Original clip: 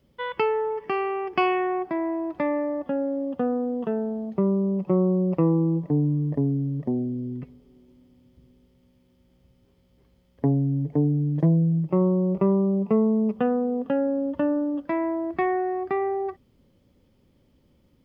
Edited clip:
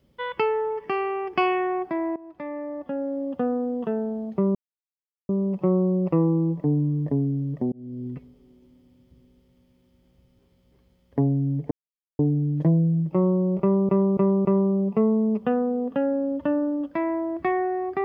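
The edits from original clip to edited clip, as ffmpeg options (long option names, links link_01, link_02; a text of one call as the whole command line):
ffmpeg -i in.wav -filter_complex "[0:a]asplit=8[link_01][link_02][link_03][link_04][link_05][link_06][link_07][link_08];[link_01]atrim=end=2.16,asetpts=PTS-STARTPTS,afade=type=out:start_time=2.156:duration=0.004:curve=hsin:silence=0.141254[link_09];[link_02]atrim=start=2.16:end=4.55,asetpts=PTS-STARTPTS,afade=type=in:duration=1.18:silence=0.141254,afade=type=out:start_time=2.386:duration=0.004:curve=hsin,apad=pad_dur=0.74[link_10];[link_03]atrim=start=4.55:end=6.98,asetpts=PTS-STARTPTS,afade=type=in:duration=0.004:curve=hsin,afade=type=out:start_time=2.426:duration=0.004:curve=hsin[link_11];[link_04]atrim=start=6.98:end=10.97,asetpts=PTS-STARTPTS,afade=type=in:duration=0.35,afade=type=out:start_time=3.986:duration=0.004:curve=hsin,apad=pad_dur=0.48[link_12];[link_05]atrim=start=10.97:end=12.672,asetpts=PTS-STARTPTS,afade=type=in:duration=0.004:curve=hsin[link_13];[link_06]atrim=start=12.388:end=12.672[link_14];[link_07]atrim=start=12.388:end=12.672[link_15];[link_08]atrim=start=12.388[link_16];[link_09][link_10][link_11][link_12][link_13]concat=n=5:v=0:a=1[link_17];[link_17][link_14]acrossfade=duration=0.004:curve1=hsin:curve2=hsin[link_18];[link_18][link_15]acrossfade=duration=0.004:curve1=hsin:curve2=hsin[link_19];[link_19][link_16]acrossfade=duration=0.004:curve1=hsin:curve2=hsin" out.wav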